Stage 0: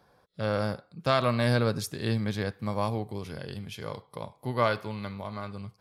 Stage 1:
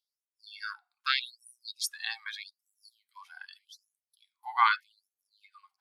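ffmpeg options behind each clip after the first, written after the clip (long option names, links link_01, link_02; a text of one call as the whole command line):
ffmpeg -i in.wav -af "afftdn=noise_reduction=20:noise_floor=-40,afftfilt=real='re*gte(b*sr/1024,690*pow(5800/690,0.5+0.5*sin(2*PI*0.82*pts/sr)))':imag='im*gte(b*sr/1024,690*pow(5800/690,0.5+0.5*sin(2*PI*0.82*pts/sr)))':win_size=1024:overlap=0.75,volume=6dB" out.wav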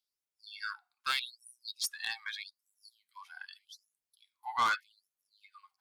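ffmpeg -i in.wav -af "asoftclip=type=tanh:threshold=-23.5dB" out.wav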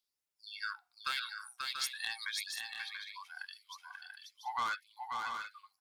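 ffmpeg -i in.wav -filter_complex "[0:a]acompressor=threshold=-35dB:ratio=4,asplit=2[link_01][link_02];[link_02]aecho=0:1:536|686|733:0.596|0.447|0.251[link_03];[link_01][link_03]amix=inputs=2:normalize=0,volume=1dB" out.wav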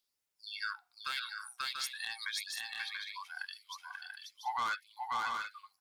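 ffmpeg -i in.wav -af "alimiter=level_in=6dB:limit=-24dB:level=0:latency=1:release=361,volume=-6dB,volume=3.5dB" out.wav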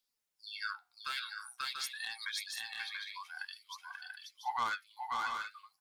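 ffmpeg -i in.wav -af "flanger=delay=3.9:depth=8.5:regen=54:speed=0.49:shape=sinusoidal,volume=3dB" out.wav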